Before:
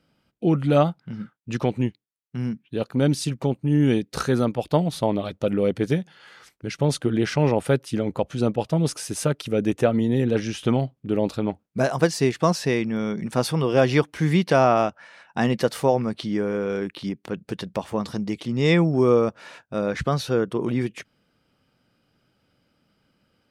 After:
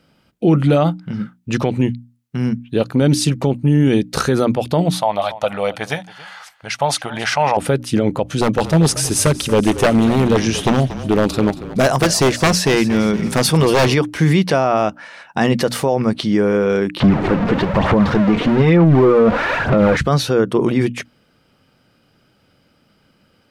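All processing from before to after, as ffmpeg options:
ffmpeg -i in.wav -filter_complex "[0:a]asettb=1/sr,asplit=3[link_01][link_02][link_03];[link_01]atrim=end=4.944[link_04];[link_02]atrim=start=4.94:end=7.57,asetpts=PTS-STARTPTS,afade=type=in:duration=0.004:curve=qsin,afade=type=out:start_time=2.626:duration=0.004:curve=qsin,lowshelf=frequency=520:width_type=q:width=3:gain=-12.5,aecho=1:1:277:0.0891,atrim=end_sample=115983[link_05];[link_03]atrim=start=7.566[link_06];[link_04][link_05]acrossfade=duration=0.004:curve1=hsin:curve2=qsin[link_07];[link_07][link_06]acrossfade=duration=0.004:curve1=qsin:curve2=hsin,asettb=1/sr,asplit=3[link_08][link_09][link_10];[link_08]atrim=end=8.304[link_11];[link_09]atrim=start=8.3:end=13.94,asetpts=PTS-STARTPTS,afade=type=in:duration=0.004:curve=qsin,afade=type=out:start_time=5.636:duration=0.004:curve=qsin,highshelf=frequency=4300:gain=5,aeval=exprs='0.168*(abs(mod(val(0)/0.168+3,4)-2)-1)':channel_layout=same,asplit=5[link_12][link_13][link_14][link_15][link_16];[link_13]adelay=232,afreqshift=-32,volume=-14.5dB[link_17];[link_14]adelay=464,afreqshift=-64,volume=-20.9dB[link_18];[link_15]adelay=696,afreqshift=-96,volume=-27.3dB[link_19];[link_16]adelay=928,afreqshift=-128,volume=-33.6dB[link_20];[link_12][link_17][link_18][link_19][link_20]amix=inputs=5:normalize=0,atrim=end_sample=248724[link_21];[link_10]atrim=start=13.936[link_22];[link_11][link_21]acrossfade=duration=0.004:curve1=hsin:curve2=qsin[link_23];[link_23][link_22]acrossfade=duration=0.004:curve1=qsin:curve2=hsin,asettb=1/sr,asplit=3[link_24][link_25][link_26];[link_24]atrim=end=17.004[link_27];[link_25]atrim=start=17:end=19.97,asetpts=PTS-STARTPTS,afade=type=in:duration=0.004:curve=qsin,afade=type=out:start_time=2.966:duration=0.004:curve=qsin,aeval=exprs='val(0)+0.5*0.0794*sgn(val(0))':channel_layout=same,lowpass=1900,aphaser=in_gain=1:out_gain=1:delay=4.3:decay=0.46:speed=1.1:type=sinusoidal[link_28];[link_26]atrim=start=19.966[link_29];[link_27][link_28]acrossfade=duration=0.004:curve1=hsin:curve2=qsin[link_30];[link_30][link_29]acrossfade=duration=0.004:curve1=qsin:curve2=hsin,bandreject=frequency=60:width_type=h:width=6,bandreject=frequency=120:width_type=h:width=6,bandreject=frequency=180:width_type=h:width=6,bandreject=frequency=240:width_type=h:width=6,bandreject=frequency=300:width_type=h:width=6,alimiter=level_in=14.5dB:limit=-1dB:release=50:level=0:latency=1,volume=-4.5dB" out.wav

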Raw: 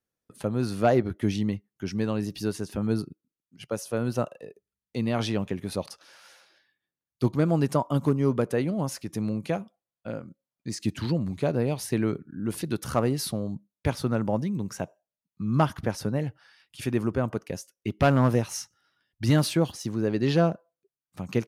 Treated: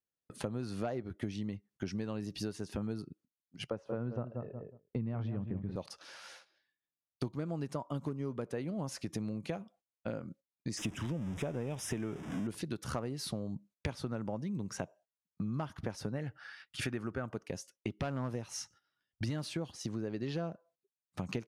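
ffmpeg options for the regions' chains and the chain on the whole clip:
ffmpeg -i in.wav -filter_complex "[0:a]asettb=1/sr,asplit=3[link_01][link_02][link_03];[link_01]atrim=end=3.704[link_04];[link_02]atrim=start=3.7:end=5.76,asetpts=PTS-STARTPTS,afade=type=in:duration=0.004:curve=qsin,afade=type=out:start_time=2.056:duration=0.004:curve=qsin,lowpass=1500,asubboost=boost=6:cutoff=220,asplit=2[link_05][link_06];[link_06]adelay=183,lowpass=frequency=950:poles=1,volume=-7dB,asplit=2[link_07][link_08];[link_08]adelay=183,lowpass=frequency=950:poles=1,volume=0.23,asplit=2[link_09][link_10];[link_10]adelay=183,lowpass=frequency=950:poles=1,volume=0.23[link_11];[link_05][link_07][link_09][link_11]amix=inputs=4:normalize=0,atrim=end_sample=90846[link_12];[link_03]atrim=start=5.756[link_13];[link_04][link_12]acrossfade=duration=0.004:curve1=hsin:curve2=qsin[link_14];[link_14][link_13]acrossfade=duration=0.004:curve1=qsin:curve2=hsin,asettb=1/sr,asplit=3[link_15][link_16][link_17];[link_15]atrim=end=10.774[link_18];[link_16]atrim=start=10.77:end=12.47,asetpts=PTS-STARTPTS,afade=type=in:duration=0.004:curve=qsin,afade=type=out:start_time=1.696:duration=0.004:curve=qsin,aeval=exprs='val(0)+0.5*0.0211*sgn(val(0))':channel_layout=same,asuperstop=centerf=4300:order=4:qfactor=2.9[link_19];[link_17]atrim=start=12.466[link_20];[link_18][link_19]acrossfade=duration=0.004:curve1=hsin:curve2=qsin[link_21];[link_21][link_20]acrossfade=duration=0.004:curve1=qsin:curve2=hsin,asettb=1/sr,asplit=3[link_22][link_23][link_24];[link_22]atrim=end=16.154[link_25];[link_23]atrim=start=16.15:end=17.31,asetpts=PTS-STARTPTS,afade=type=in:duration=0.004:curve=qsin,afade=type=out:start_time=1.156:duration=0.004:curve=qsin,equalizer=frequency=1500:width=1.5:gain=8.5,bandreject=frequency=1000:width=9.2[link_26];[link_24]atrim=start=17.306[link_27];[link_25][link_26]acrossfade=duration=0.004:curve1=hsin:curve2=qsin[link_28];[link_28][link_27]acrossfade=duration=0.004:curve1=qsin:curve2=hsin,agate=range=-14dB:threshold=-55dB:ratio=16:detection=peak,lowpass=9000,acompressor=threshold=-36dB:ratio=10,volume=2dB" out.wav

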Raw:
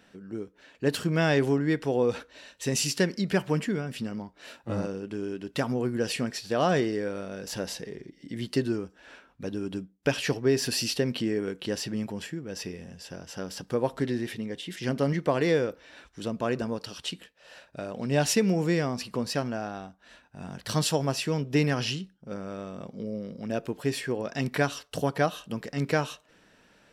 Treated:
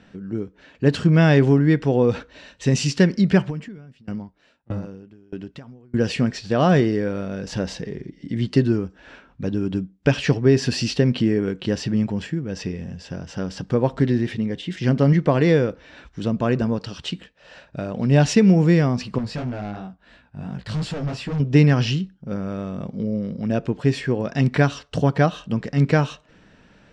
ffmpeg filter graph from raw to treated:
ffmpeg -i in.wav -filter_complex "[0:a]asettb=1/sr,asplit=3[link_01][link_02][link_03];[link_01]atrim=end=3.454[link_04];[link_02]atrim=start=3.45:end=5.94,asetpts=PTS-STARTPTS,afade=type=in:duration=0.004:curve=qsin,afade=type=out:start_time=2.486:duration=0.004:curve=qsin,acompressor=threshold=-31dB:ratio=6:attack=3.2:release=140:knee=1:detection=peak,aeval=exprs='val(0)*pow(10,-28*if(lt(mod(1.6*n/s,1),2*abs(1.6)/1000),1-mod(1.6*n/s,1)/(2*abs(1.6)/1000),(mod(1.6*n/s,1)-2*abs(1.6)/1000)/(1-2*abs(1.6)/1000))/20)':channel_layout=same[link_05];[link_03]atrim=start=5.936[link_06];[link_04][link_05]acrossfade=duration=0.004:curve1=hsin:curve2=qsin[link_07];[link_07][link_06]acrossfade=duration=0.004:curve1=qsin:curve2=hsin,asettb=1/sr,asplit=3[link_08][link_09][link_10];[link_08]atrim=end=19.184[link_11];[link_09]atrim=start=19.18:end=21.4,asetpts=PTS-STARTPTS,afade=type=in:duration=0.004:curve=qsin,afade=type=out:start_time=2.216:duration=0.004:curve=qsin,equalizer=frequency=6000:width=8:gain=-10,flanger=delay=15.5:depth=4.1:speed=2.9,asoftclip=type=hard:threshold=-33.5dB[link_12];[link_10]atrim=start=21.396[link_13];[link_11][link_12]acrossfade=duration=0.004:curve1=hsin:curve2=qsin[link_14];[link_14][link_13]acrossfade=duration=0.004:curve1=qsin:curve2=hsin,lowpass=frequency=7500:width=0.5412,lowpass=frequency=7500:width=1.3066,bass=frequency=250:gain=9,treble=frequency=4000:gain=-5,volume=5dB" out.wav

